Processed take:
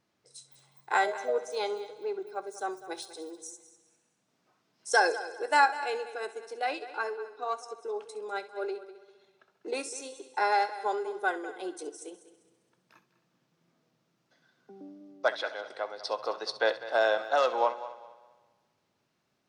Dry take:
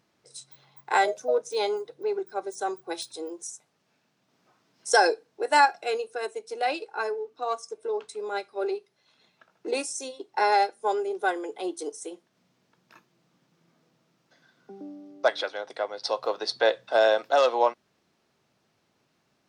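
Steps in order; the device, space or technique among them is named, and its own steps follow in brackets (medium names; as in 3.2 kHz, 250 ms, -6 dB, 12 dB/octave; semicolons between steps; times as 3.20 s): dynamic bell 1.4 kHz, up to +5 dB, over -38 dBFS, Q 1.2; multi-head tape echo (multi-head delay 66 ms, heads first and third, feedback 48%, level -15.5 dB; wow and flutter 22 cents); trim -6 dB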